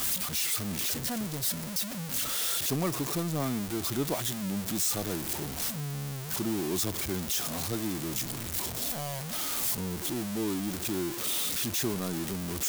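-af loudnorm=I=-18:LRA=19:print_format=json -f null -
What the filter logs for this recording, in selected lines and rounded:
"input_i" : "-30.4",
"input_tp" : "-17.8",
"input_lra" : "1.7",
"input_thresh" : "-40.4",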